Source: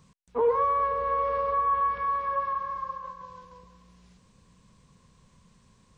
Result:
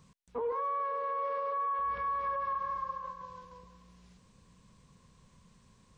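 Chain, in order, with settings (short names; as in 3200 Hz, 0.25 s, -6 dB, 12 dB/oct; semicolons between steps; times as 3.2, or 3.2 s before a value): 0.52–1.79 HPF 350 Hz 12 dB/oct; limiter -25.5 dBFS, peak gain reduction 10 dB; gain -2 dB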